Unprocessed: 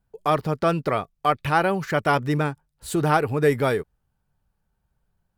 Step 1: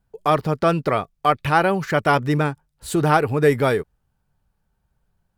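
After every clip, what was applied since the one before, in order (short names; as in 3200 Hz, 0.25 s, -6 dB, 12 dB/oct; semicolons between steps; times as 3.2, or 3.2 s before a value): high shelf 11000 Hz -2.5 dB; gain +3 dB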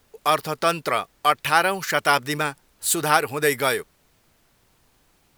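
tilt +4 dB/oct; added noise pink -61 dBFS; gain -1 dB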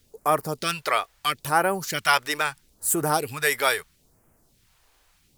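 phaser stages 2, 0.76 Hz, lowest notch 160–3800 Hz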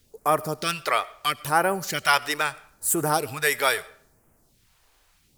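digital reverb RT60 0.6 s, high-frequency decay 0.65×, pre-delay 50 ms, DRR 20 dB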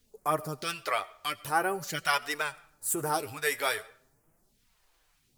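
flange 0.43 Hz, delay 4 ms, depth 7.3 ms, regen +32%; gain -3 dB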